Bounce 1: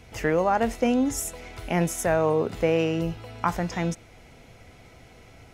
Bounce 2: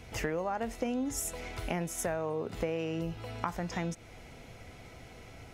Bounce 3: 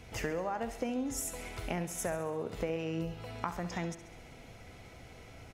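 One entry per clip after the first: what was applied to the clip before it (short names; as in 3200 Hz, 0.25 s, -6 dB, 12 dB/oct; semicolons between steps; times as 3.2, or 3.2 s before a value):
compressor 5:1, threshold -31 dBFS, peak gain reduction 12.5 dB
feedback echo 68 ms, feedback 59%, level -12.5 dB; gain -2 dB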